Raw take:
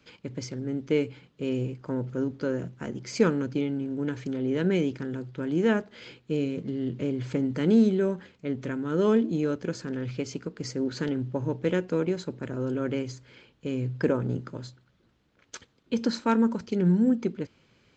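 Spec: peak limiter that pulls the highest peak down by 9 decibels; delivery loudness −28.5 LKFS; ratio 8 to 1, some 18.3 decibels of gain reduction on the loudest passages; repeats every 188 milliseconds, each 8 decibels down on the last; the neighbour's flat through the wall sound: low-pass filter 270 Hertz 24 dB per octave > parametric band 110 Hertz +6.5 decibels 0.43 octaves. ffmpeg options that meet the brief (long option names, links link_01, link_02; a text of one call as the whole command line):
ffmpeg -i in.wav -af "acompressor=threshold=-35dB:ratio=8,alimiter=level_in=8.5dB:limit=-24dB:level=0:latency=1,volume=-8.5dB,lowpass=frequency=270:width=0.5412,lowpass=frequency=270:width=1.3066,equalizer=frequency=110:width_type=o:width=0.43:gain=6.5,aecho=1:1:188|376|564|752|940:0.398|0.159|0.0637|0.0255|0.0102,volume=14.5dB" out.wav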